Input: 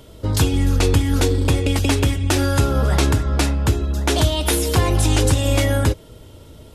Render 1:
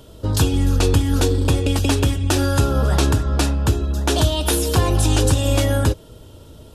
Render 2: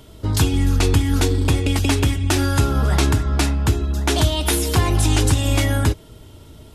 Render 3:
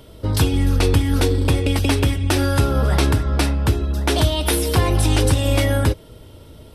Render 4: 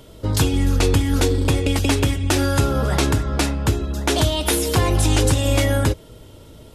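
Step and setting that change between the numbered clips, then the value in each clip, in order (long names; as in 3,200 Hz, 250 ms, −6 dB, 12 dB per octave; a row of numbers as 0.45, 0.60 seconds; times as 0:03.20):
parametric band, centre frequency: 2,100, 520, 6,900, 76 Hertz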